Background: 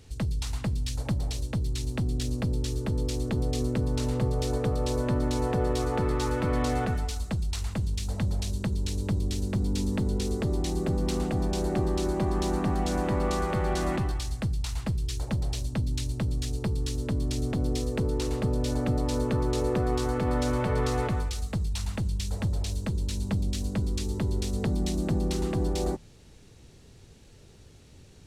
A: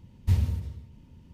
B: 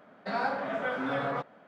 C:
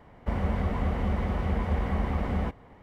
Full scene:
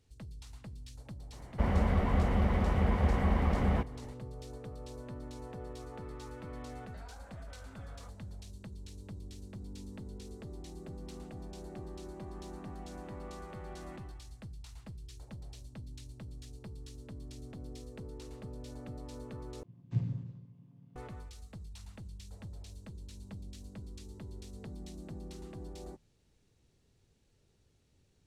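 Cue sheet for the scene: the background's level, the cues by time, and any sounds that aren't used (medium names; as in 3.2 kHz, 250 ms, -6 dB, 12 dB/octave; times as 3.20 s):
background -18 dB
1.32 s: add C -0.5 dB
6.68 s: add B -16 dB + compression, threshold -35 dBFS
19.63 s: replace with A -1.5 dB + vocoder on a held chord minor triad, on A#2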